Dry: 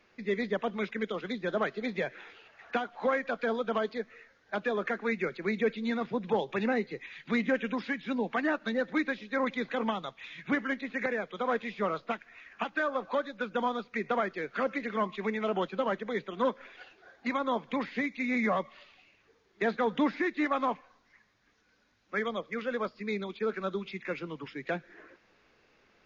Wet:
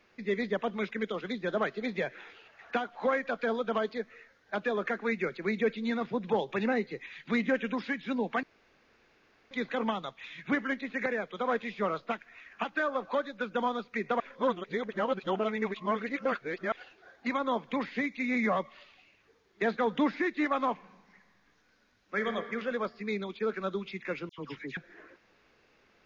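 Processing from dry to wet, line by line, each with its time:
0:08.43–0:09.51: fill with room tone
0:14.20–0:16.72: reverse
0:20.72–0:22.35: thrown reverb, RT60 1.8 s, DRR 5.5 dB
0:24.29–0:24.77: all-pass dispersion lows, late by 92 ms, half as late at 2,100 Hz

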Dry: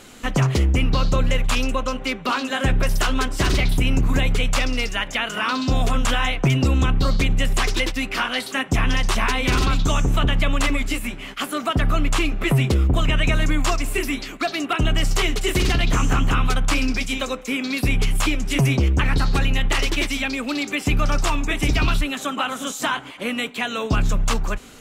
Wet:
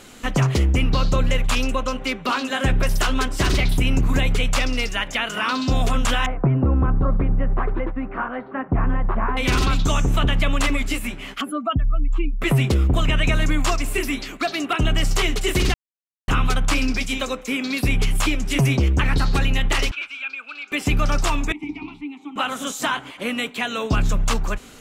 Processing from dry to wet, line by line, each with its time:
0:06.26–0:09.37: low-pass filter 1,400 Hz 24 dB per octave
0:11.41–0:12.42: expanding power law on the bin magnitudes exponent 2.1
0:15.74–0:16.28: silence
0:19.91–0:20.72: pair of resonant band-passes 1,900 Hz, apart 0.74 octaves
0:21.52–0:22.36: formant filter u

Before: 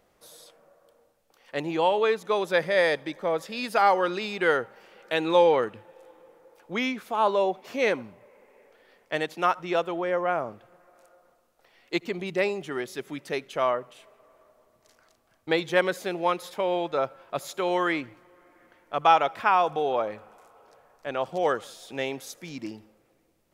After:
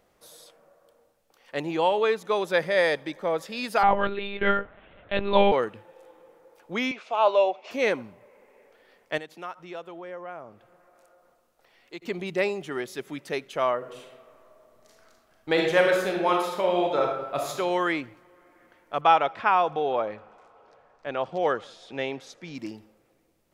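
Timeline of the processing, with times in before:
0:03.83–0:05.52: one-pitch LPC vocoder at 8 kHz 200 Hz
0:06.91–0:07.71: loudspeaker in its box 480–6,400 Hz, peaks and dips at 620 Hz +7 dB, 1,700 Hz −5 dB, 2,600 Hz +9 dB
0:09.18–0:12.02: downward compressor 1.5 to 1, threshold −57 dBFS
0:13.77–0:17.58: thrown reverb, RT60 1 s, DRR 0 dB
0:19.01–0:22.55: low-pass filter 4,500 Hz

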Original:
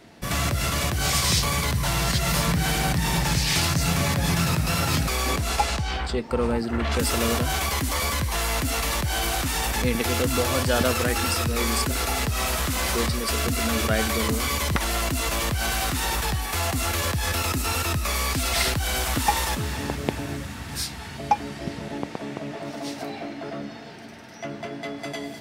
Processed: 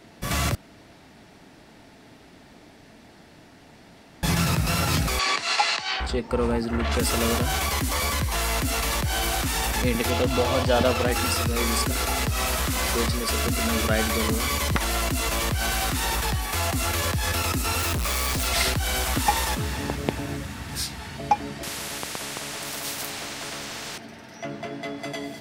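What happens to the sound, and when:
0:00.55–0:04.23: fill with room tone
0:05.19–0:06.00: loudspeaker in its box 490–7,900 Hz, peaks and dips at 530 Hz −6 dB, 1,100 Hz +4 dB, 1,900 Hz +7 dB, 2,700 Hz +6 dB, 4,300 Hz +9 dB
0:10.10–0:11.12: drawn EQ curve 410 Hz 0 dB, 700 Hz +5 dB, 1,600 Hz −3 dB, 3,300 Hz +1 dB, 9,500 Hz −9 dB
0:17.79–0:18.47: log-companded quantiser 2 bits
0:21.63–0:23.98: every bin compressed towards the loudest bin 4 to 1

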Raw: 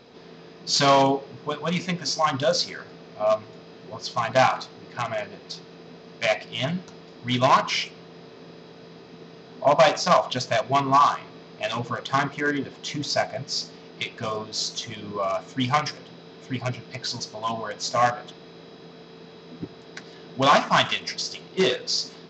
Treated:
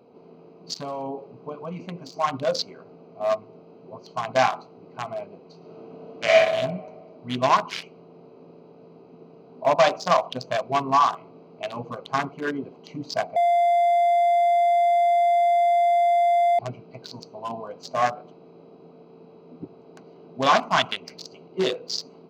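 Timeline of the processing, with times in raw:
0:00.73–0:02.14: downward compressor 12 to 1, threshold −24 dBFS
0:05.57–0:06.39: thrown reverb, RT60 1.5 s, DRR −5.5 dB
0:13.36–0:16.59: beep over 694 Hz −14 dBFS
whole clip: adaptive Wiener filter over 25 samples; high-pass filter 230 Hz 6 dB per octave

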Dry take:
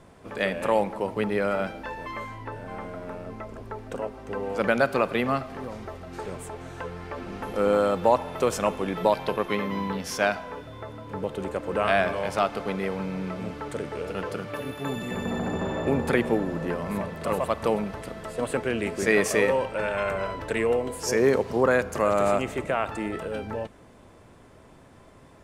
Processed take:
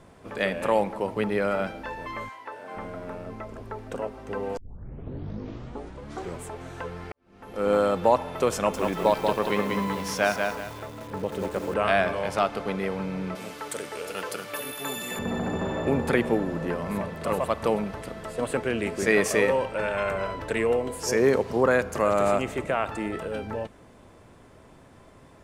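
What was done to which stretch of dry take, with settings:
0:02.28–0:02.75: high-pass filter 800 Hz → 310 Hz
0:04.57: tape start 1.86 s
0:07.12–0:07.73: fade in quadratic
0:08.55–0:11.74: feedback echo at a low word length 187 ms, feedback 35%, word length 7 bits, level −4 dB
0:13.35–0:15.19: RIAA equalisation recording

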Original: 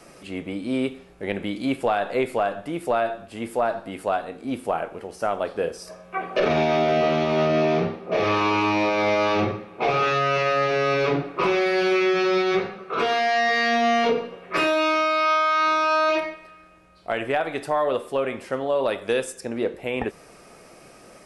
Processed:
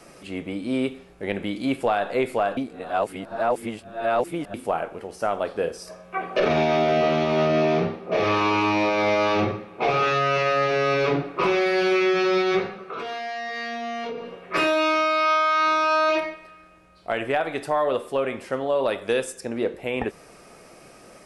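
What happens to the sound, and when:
0:02.57–0:04.54: reverse
0:12.79–0:14.36: downward compressor 4 to 1, threshold −30 dBFS

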